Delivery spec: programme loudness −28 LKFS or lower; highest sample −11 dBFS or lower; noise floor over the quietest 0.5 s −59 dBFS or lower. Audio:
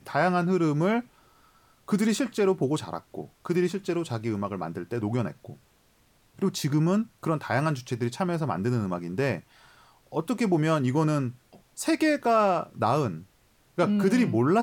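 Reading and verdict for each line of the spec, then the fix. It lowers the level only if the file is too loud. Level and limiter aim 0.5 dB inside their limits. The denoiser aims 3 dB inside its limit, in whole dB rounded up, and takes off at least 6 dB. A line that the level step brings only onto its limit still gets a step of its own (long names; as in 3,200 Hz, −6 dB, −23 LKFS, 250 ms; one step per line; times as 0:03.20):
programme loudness −26.5 LKFS: out of spec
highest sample −12.0 dBFS: in spec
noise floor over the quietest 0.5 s −63 dBFS: in spec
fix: level −2 dB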